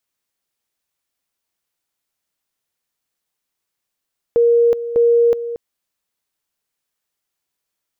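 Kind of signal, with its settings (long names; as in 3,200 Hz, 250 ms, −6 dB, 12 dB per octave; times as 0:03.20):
tone at two levels in turn 470 Hz −9.5 dBFS, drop 12.5 dB, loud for 0.37 s, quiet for 0.23 s, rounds 2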